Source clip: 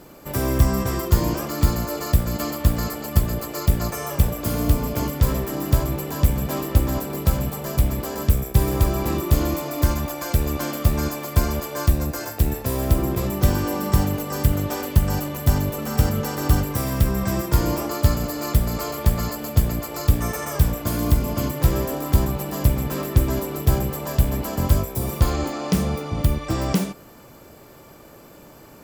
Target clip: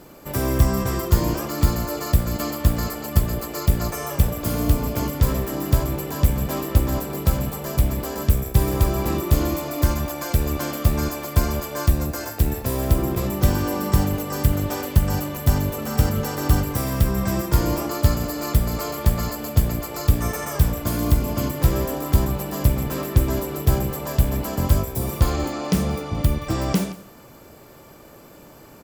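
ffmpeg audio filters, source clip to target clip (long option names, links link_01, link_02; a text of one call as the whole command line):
ffmpeg -i in.wav -af "aecho=1:1:174:0.112" out.wav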